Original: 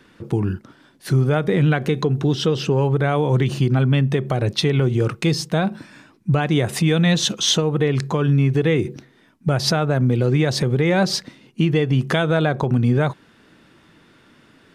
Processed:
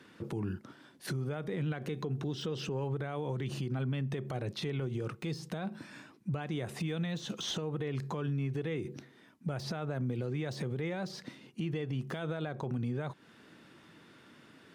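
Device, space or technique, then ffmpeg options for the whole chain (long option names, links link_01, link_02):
podcast mastering chain: -af "highpass=100,deesser=0.7,acompressor=threshold=-28dB:ratio=3,alimiter=limit=-22dB:level=0:latency=1,volume=-4.5dB" -ar 44100 -c:a libmp3lame -b:a 96k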